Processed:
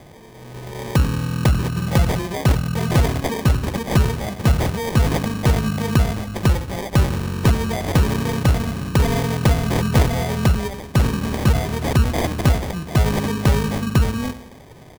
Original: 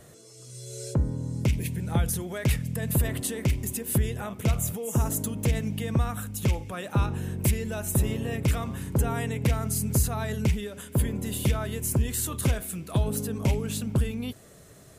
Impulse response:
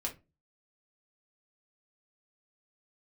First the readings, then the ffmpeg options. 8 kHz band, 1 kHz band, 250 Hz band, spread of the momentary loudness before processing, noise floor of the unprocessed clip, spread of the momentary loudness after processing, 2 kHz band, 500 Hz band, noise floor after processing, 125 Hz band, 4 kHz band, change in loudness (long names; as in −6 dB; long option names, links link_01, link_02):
−0.5 dB, +11.5 dB, +8.5 dB, 4 LU, −51 dBFS, 4 LU, +10.5 dB, +9.0 dB, −42 dBFS, +8.5 dB, +10.0 dB, +8.0 dB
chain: -filter_complex "[0:a]asplit=2[link_01][link_02];[link_02]adelay=91,lowpass=frequency=2000:poles=1,volume=-13dB,asplit=2[link_03][link_04];[link_04]adelay=91,lowpass=frequency=2000:poles=1,volume=0.52,asplit=2[link_05][link_06];[link_06]adelay=91,lowpass=frequency=2000:poles=1,volume=0.52,asplit=2[link_07][link_08];[link_08]adelay=91,lowpass=frequency=2000:poles=1,volume=0.52,asplit=2[link_09][link_10];[link_10]adelay=91,lowpass=frequency=2000:poles=1,volume=0.52[link_11];[link_01][link_03][link_05][link_07][link_09][link_11]amix=inputs=6:normalize=0,acrusher=samples=32:mix=1:aa=0.000001,volume=8dB"